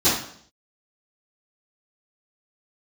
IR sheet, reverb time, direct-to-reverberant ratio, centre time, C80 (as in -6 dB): 0.60 s, -15.0 dB, 47 ms, 7.5 dB